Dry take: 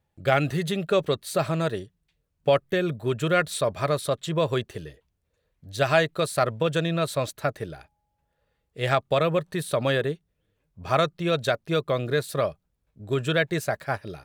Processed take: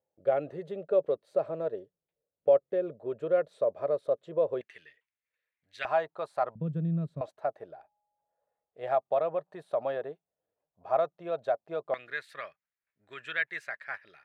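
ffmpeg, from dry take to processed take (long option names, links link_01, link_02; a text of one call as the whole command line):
ffmpeg -i in.wav -af "asetnsamples=nb_out_samples=441:pad=0,asendcmd='4.61 bandpass f 2100;5.85 bandpass f 830;6.55 bandpass f 180;7.21 bandpass f 710;11.94 bandpass f 1900',bandpass=frequency=530:width_type=q:width=3.3:csg=0" out.wav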